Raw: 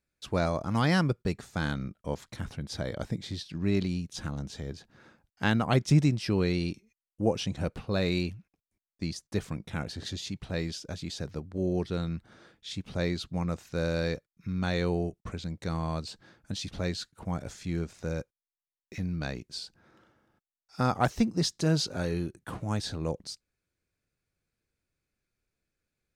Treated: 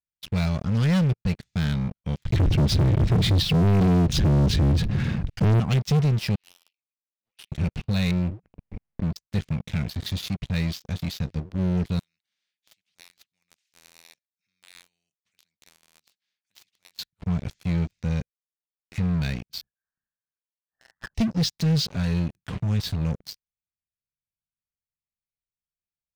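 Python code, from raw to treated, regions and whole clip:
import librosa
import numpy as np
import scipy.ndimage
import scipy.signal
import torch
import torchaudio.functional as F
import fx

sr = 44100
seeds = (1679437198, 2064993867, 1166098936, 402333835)

y = fx.chain(x, sr, fx.bass_treble(bass_db=15, treble_db=-5),
    fx.env_flatten(amount_pct=50), at=(2.25, 5.6))
y = fx.chain(y, sr, fx.ladder_bandpass(hz=3500.0, resonance_pct=20),
    fx.doppler_dist(depth_ms=0.42), at=(6.35, 7.52))
y = fx.chain(y, sr, fx.cheby1_lowpass(hz=870.0, order=2),
    fx.pre_swell(db_per_s=38.0), at=(8.11, 9.16))
y = fx.chain(y, sr, fx.highpass(hz=350.0, slope=6),
    fx.differentiator(),
    fx.spectral_comp(ratio=2.0), at=(11.99, 16.99))
y = fx.chain(y, sr, fx.steep_highpass(hz=1500.0, slope=96),
    fx.freq_invert(carrier_hz=3200),
    fx.doubler(ms=30.0, db=-12.0), at=(19.61, 21.15))
y = scipy.signal.sosfilt(scipy.signal.bessel(2, 3300.0, 'lowpass', norm='mag', fs=sr, output='sos'), y)
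y = fx.band_shelf(y, sr, hz=650.0, db=-14.0, octaves=2.8)
y = fx.leveller(y, sr, passes=5)
y = y * librosa.db_to_amplitude(-7.5)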